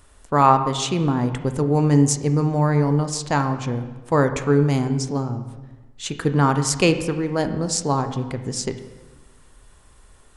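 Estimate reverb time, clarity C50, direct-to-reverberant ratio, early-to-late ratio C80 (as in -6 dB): 1.2 s, 10.0 dB, 8.0 dB, 11.5 dB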